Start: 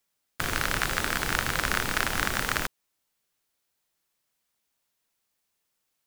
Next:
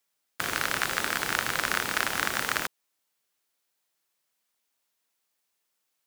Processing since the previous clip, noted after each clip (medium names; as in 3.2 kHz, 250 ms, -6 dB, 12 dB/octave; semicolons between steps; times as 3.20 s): high-pass 290 Hz 6 dB/octave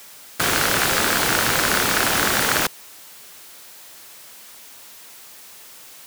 power-law waveshaper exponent 0.5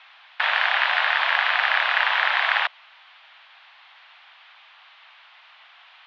mistuned SSB +210 Hz 520–3300 Hz; trim +1 dB